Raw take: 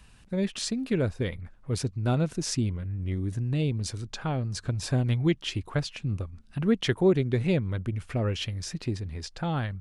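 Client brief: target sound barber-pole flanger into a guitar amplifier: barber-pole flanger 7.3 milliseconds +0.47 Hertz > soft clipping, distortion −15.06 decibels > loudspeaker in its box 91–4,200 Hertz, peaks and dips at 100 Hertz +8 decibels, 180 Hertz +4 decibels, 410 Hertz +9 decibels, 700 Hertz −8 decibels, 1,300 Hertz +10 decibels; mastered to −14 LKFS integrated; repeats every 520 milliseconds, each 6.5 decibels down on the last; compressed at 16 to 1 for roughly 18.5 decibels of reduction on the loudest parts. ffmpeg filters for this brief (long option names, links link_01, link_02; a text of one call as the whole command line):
ffmpeg -i in.wav -filter_complex "[0:a]acompressor=threshold=-36dB:ratio=16,aecho=1:1:520|1040|1560|2080|2600|3120:0.473|0.222|0.105|0.0491|0.0231|0.0109,asplit=2[link_01][link_02];[link_02]adelay=7.3,afreqshift=0.47[link_03];[link_01][link_03]amix=inputs=2:normalize=1,asoftclip=threshold=-37.5dB,highpass=91,equalizer=frequency=100:width_type=q:width=4:gain=8,equalizer=frequency=180:width_type=q:width=4:gain=4,equalizer=frequency=410:width_type=q:width=4:gain=9,equalizer=frequency=700:width_type=q:width=4:gain=-8,equalizer=frequency=1300:width_type=q:width=4:gain=10,lowpass=frequency=4200:width=0.5412,lowpass=frequency=4200:width=1.3066,volume=29dB" out.wav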